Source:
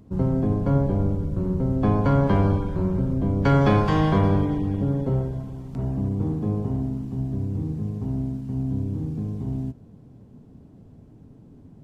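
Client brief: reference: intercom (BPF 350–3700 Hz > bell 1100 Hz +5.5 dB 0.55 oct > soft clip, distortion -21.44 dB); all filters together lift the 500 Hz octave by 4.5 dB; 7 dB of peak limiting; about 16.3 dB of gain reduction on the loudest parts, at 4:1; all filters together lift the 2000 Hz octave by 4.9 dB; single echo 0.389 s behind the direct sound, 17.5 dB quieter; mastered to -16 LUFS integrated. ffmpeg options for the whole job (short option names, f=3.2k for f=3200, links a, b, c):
-af "equalizer=f=500:t=o:g=6.5,equalizer=f=2k:t=o:g=5,acompressor=threshold=-33dB:ratio=4,alimiter=level_in=3.5dB:limit=-24dB:level=0:latency=1,volume=-3.5dB,highpass=350,lowpass=3.7k,equalizer=f=1.1k:t=o:w=0.55:g=5.5,aecho=1:1:389:0.133,asoftclip=threshold=-31dB,volume=26.5dB"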